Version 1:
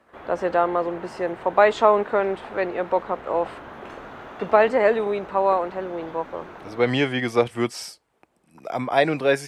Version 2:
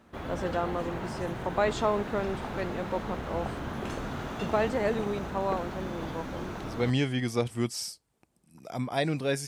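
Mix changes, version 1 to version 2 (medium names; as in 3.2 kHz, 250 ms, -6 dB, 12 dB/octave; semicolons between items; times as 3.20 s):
speech -11.5 dB; master: remove three-band isolator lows -13 dB, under 340 Hz, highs -13 dB, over 3 kHz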